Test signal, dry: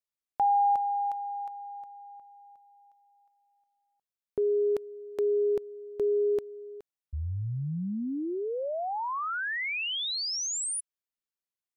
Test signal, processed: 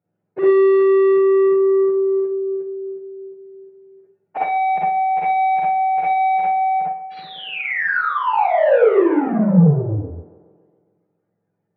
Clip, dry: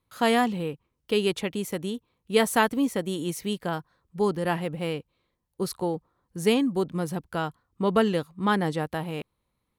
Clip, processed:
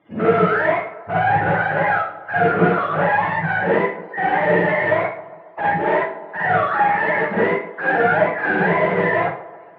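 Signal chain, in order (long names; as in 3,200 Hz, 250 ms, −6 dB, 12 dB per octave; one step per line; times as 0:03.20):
frequency axis turned over on the octave scale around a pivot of 560 Hz
mid-hump overdrive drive 41 dB, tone 1,200 Hz, clips at −9.5 dBFS
loudspeaker in its box 150–2,400 Hz, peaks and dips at 170 Hz +10 dB, 250 Hz −9 dB, 490 Hz +4 dB, 1,100 Hz −5 dB
delay with a band-pass on its return 138 ms, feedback 61%, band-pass 640 Hz, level −15 dB
four-comb reverb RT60 0.41 s, DRR −6 dB
level −5 dB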